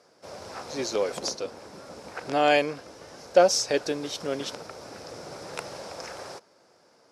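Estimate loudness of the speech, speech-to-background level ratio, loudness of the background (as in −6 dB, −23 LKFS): −25.5 LKFS, 15.5 dB, −41.0 LKFS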